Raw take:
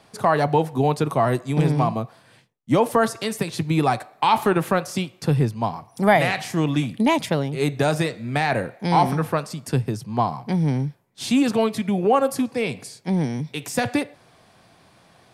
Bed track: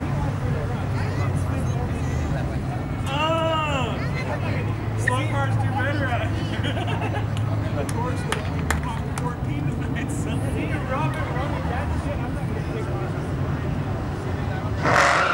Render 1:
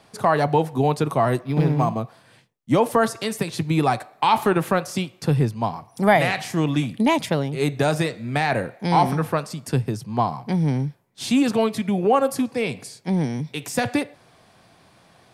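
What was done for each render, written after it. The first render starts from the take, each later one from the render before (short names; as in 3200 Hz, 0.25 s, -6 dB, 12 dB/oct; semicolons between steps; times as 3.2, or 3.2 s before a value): 1.4–1.99 decimation joined by straight lines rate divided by 6×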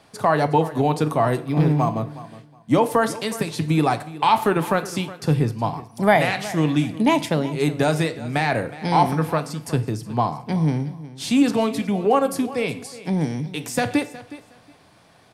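feedback echo 0.366 s, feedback 20%, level -17 dB; FDN reverb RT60 0.52 s, low-frequency decay 0.95×, high-frequency decay 0.9×, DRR 11.5 dB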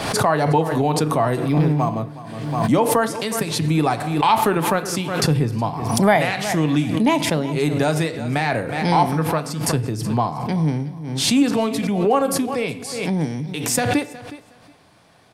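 backwards sustainer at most 46 dB/s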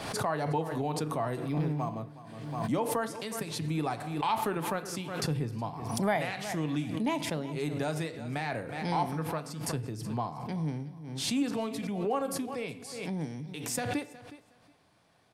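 gain -13 dB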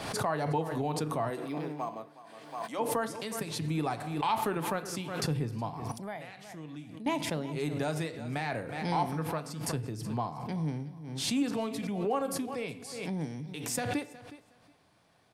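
1.29–2.78 HPF 240 Hz -> 620 Hz; 5.92–7.06 gain -12 dB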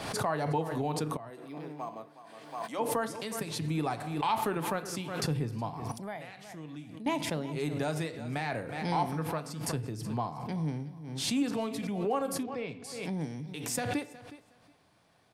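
1.17–2.22 fade in, from -16 dB; 12.43–12.84 air absorption 150 m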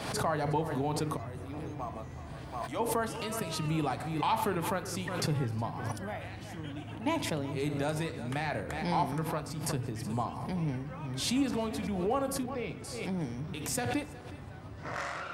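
add bed track -20 dB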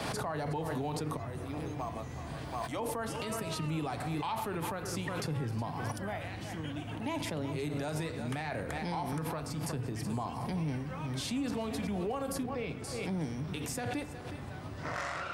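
limiter -26.5 dBFS, peak gain reduction 8.5 dB; three-band squash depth 40%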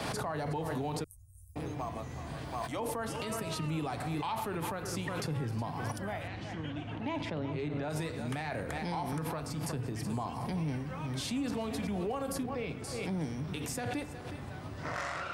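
1.04–1.56 inverse Chebyshev band-stop 170–3600 Hz, stop band 50 dB; 6.27–7.89 LPF 5400 Hz -> 2800 Hz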